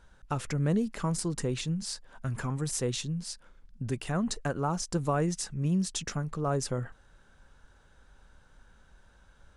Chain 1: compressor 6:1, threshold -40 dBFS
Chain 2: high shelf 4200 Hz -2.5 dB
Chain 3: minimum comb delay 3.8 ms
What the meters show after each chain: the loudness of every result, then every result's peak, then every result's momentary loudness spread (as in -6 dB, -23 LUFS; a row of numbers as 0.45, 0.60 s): -43.5, -32.0, -33.0 LUFS; -27.0, -16.5, -16.5 dBFS; 20, 8, 10 LU